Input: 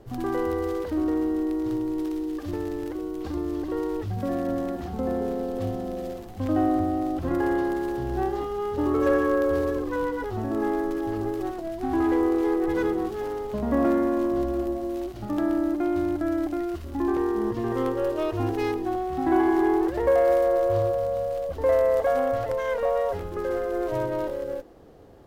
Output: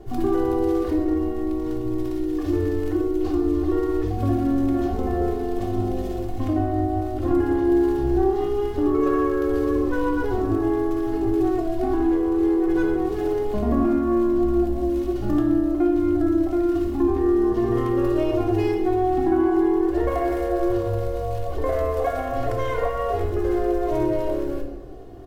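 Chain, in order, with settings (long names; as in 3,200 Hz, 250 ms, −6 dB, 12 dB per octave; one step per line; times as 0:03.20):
low-shelf EQ 490 Hz +5.5 dB
comb filter 2.8 ms, depth 70%
downward compressor, threshold −20 dBFS, peak gain reduction 10.5 dB
rectangular room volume 310 cubic metres, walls mixed, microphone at 0.99 metres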